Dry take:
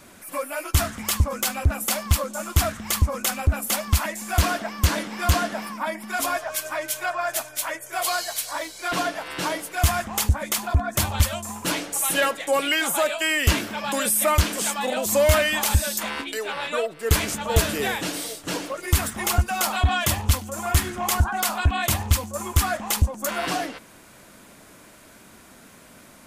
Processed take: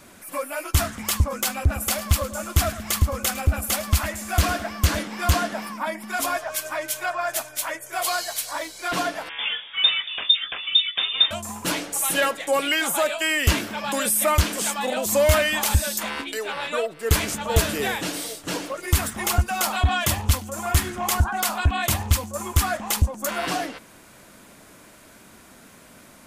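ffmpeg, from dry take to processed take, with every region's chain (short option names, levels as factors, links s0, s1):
-filter_complex "[0:a]asettb=1/sr,asplit=3[s0][s1][s2];[s0]atrim=end=1.584[s3];[s1]atrim=start=1.58:end=5.03,asetpts=PTS-STARTPTS,afade=t=in:d=0.004:c=qsin,afade=t=out:st=3.446:d=0.004:c=qsin,bandreject=f=940:w=10,aecho=1:1:107|214|321:0.178|0.0658|0.0243,atrim=end_sample=152145[s4];[s2]atrim=start=5.026[s5];[s3][s4]acrossfade=d=0.004:c1=hsin:c2=qsin[s6];[s6][s5]acrossfade=d=0.004:c1=qsin:c2=hsin,asettb=1/sr,asplit=3[s7][s8][s9];[s7]atrim=end=9.294[s10];[s8]atrim=start=9.29:end=11.31,asetpts=PTS-STARTPTS,afade=t=in:d=0.004:c=qsin,afade=t=out:st=2.016:d=0.004:c=qsin,aemphasis=mode=reproduction:type=75fm,asplit=2[s11][s12];[s12]adelay=18,volume=0.282[s13];[s11][s13]amix=inputs=2:normalize=0,atrim=end_sample=89082,lowpass=f=3100:t=q:w=0.5098,lowpass=f=3100:t=q:w=0.6013,lowpass=f=3100:t=q:w=0.9,lowpass=f=3100:t=q:w=2.563,afreqshift=-3700[s14];[s9]atrim=start=11.306[s15];[s10][s14]acrossfade=d=0.004:c1=hsin:c2=qsin[s16];[s16][s15]acrossfade=d=0.004:c1=qsin:c2=hsin"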